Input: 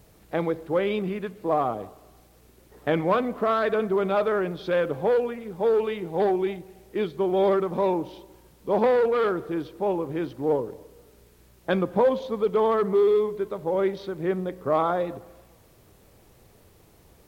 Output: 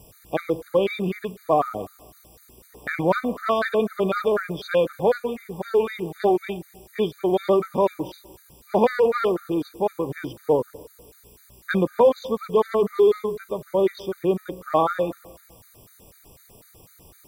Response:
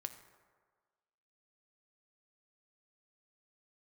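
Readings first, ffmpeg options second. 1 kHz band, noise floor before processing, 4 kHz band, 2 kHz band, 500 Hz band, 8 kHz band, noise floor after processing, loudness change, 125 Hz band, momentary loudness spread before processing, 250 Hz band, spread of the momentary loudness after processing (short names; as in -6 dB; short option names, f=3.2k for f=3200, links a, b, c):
+1.5 dB, -56 dBFS, +3.5 dB, +3.0 dB, +1.5 dB, n/a, -54 dBFS, +1.5 dB, +1.5 dB, 10 LU, +1.5 dB, 12 LU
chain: -af "aemphasis=mode=production:type=cd,afftfilt=real='re*gt(sin(2*PI*4*pts/sr)*(1-2*mod(floor(b*sr/1024/1200),2)),0)':imag='im*gt(sin(2*PI*4*pts/sr)*(1-2*mod(floor(b*sr/1024/1200),2)),0)':win_size=1024:overlap=0.75,volume=5dB"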